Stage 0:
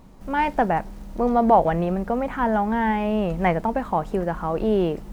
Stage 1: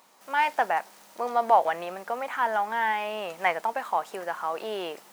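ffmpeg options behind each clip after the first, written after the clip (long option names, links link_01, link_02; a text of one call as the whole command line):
ffmpeg -i in.wav -af "highpass=810,highshelf=frequency=3400:gain=6.5" out.wav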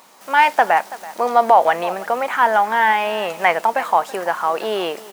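ffmpeg -i in.wav -af "aecho=1:1:330:0.119,alimiter=level_in=11.5dB:limit=-1dB:release=50:level=0:latency=1,volume=-1dB" out.wav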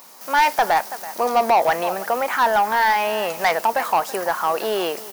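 ffmpeg -i in.wav -af "asoftclip=type=tanh:threshold=-10dB,aexciter=amount=2.2:drive=3.6:freq=4600" out.wav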